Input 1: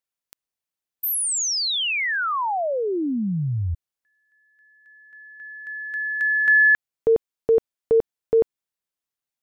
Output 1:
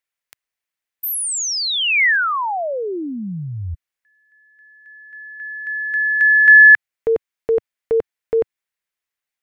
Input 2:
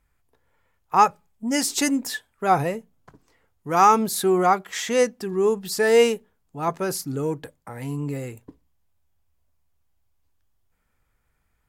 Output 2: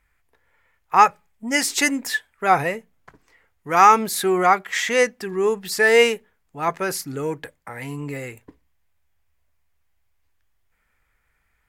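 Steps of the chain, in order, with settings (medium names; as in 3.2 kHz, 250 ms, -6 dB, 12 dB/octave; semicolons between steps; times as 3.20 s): graphic EQ 125/250/2000 Hz -4/-3/+9 dB; trim +1 dB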